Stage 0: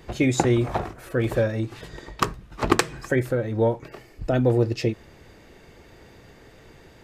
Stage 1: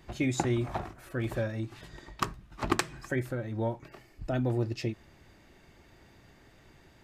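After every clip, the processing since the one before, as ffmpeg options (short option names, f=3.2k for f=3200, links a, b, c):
-af "equalizer=f=470:w=4.7:g=-10,volume=-7.5dB"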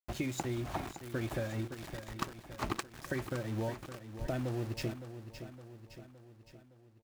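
-filter_complex "[0:a]acompressor=threshold=-34dB:ratio=8,aeval=exprs='val(0)*gte(abs(val(0)),0.00596)':c=same,asplit=2[a][b];[b]aecho=0:1:564|1128|1692|2256|2820|3384:0.282|0.158|0.0884|0.0495|0.0277|0.0155[c];[a][c]amix=inputs=2:normalize=0,volume=1.5dB"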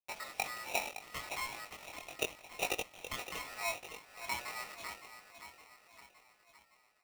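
-af "bandpass=f=940:t=q:w=2.9:csg=0,flanger=delay=19.5:depth=2.9:speed=0.76,aeval=exprs='val(0)*sgn(sin(2*PI*1600*n/s))':c=same,volume=11dB"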